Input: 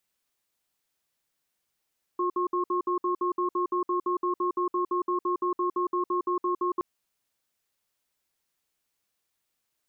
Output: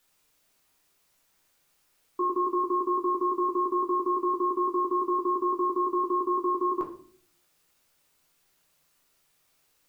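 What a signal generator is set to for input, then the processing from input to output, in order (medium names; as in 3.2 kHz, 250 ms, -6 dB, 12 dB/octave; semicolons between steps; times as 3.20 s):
cadence 357 Hz, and 1.08 kHz, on 0.11 s, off 0.06 s, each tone -26.5 dBFS 4.62 s
word length cut 12-bit, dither triangular; simulated room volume 52 m³, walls mixed, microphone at 0.59 m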